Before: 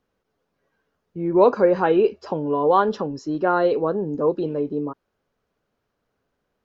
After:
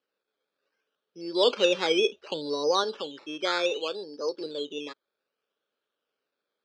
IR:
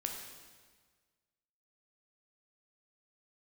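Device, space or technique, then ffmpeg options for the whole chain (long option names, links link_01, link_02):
circuit-bent sampling toy: -filter_complex "[0:a]asettb=1/sr,asplit=3[link_01][link_02][link_03];[link_01]atrim=end=1.444[link_04];[link_02]atrim=start=1.44:end=2.84,asetpts=PTS-STARTPTS,afade=type=in:duration=0.004:curve=qsin,afade=type=out:start_time=1.396:duration=0.004:curve=qsin,aemphasis=mode=reproduction:type=bsi[link_05];[link_03]atrim=start=2.836[link_06];[link_04][link_05]acrossfade=duration=0.004:curve1=hsin:curve2=qsin[link_07];[link_07][link_06]acrossfade=duration=0.004:curve1=qsin:curve2=hsin,asettb=1/sr,asplit=3[link_08][link_09][link_10];[link_08]atrim=end=3.714[link_11];[link_09]atrim=start=3.71:end=4.41,asetpts=PTS-STARTPTS,afade=type=in:duration=0.004:curve=qsin,afade=type=out:start_time=0.696:duration=0.004:curve=qsin,highpass=frequency=330:poles=1[link_12];[link_10]atrim=start=4.406[link_13];[link_11][link_12]acrossfade=duration=0.004:curve1=hsin:curve2=qsin[link_14];[link_14][link_13]acrossfade=duration=0.004:curve1=qsin:curve2=hsin,acrusher=samples=12:mix=1:aa=0.000001:lfo=1:lforange=7.2:lforate=0.65,highpass=540,equalizer=frequency=720:width_type=q:width=4:gain=-9,equalizer=frequency=1000:width_type=q:width=4:gain=-8,equalizer=frequency=2000:width_type=q:width=4:gain=-8,equalizer=frequency=3200:width_type=q:width=4:gain=4,lowpass=frequency=5000:width=0.5412,lowpass=frequency=5000:width=1.3066,volume=-2.5dB"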